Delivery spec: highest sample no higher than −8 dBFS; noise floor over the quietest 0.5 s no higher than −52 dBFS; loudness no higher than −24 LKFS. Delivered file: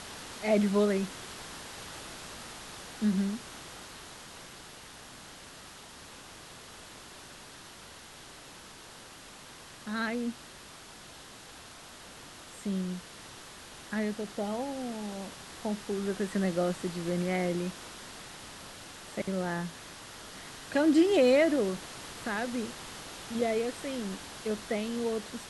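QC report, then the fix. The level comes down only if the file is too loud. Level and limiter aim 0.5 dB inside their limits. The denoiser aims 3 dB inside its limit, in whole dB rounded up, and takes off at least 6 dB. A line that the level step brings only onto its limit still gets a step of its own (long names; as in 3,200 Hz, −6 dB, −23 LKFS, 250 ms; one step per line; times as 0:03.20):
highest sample −14.0 dBFS: in spec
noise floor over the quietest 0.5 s −50 dBFS: out of spec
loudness −32.0 LKFS: in spec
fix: broadband denoise 6 dB, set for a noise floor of −50 dBFS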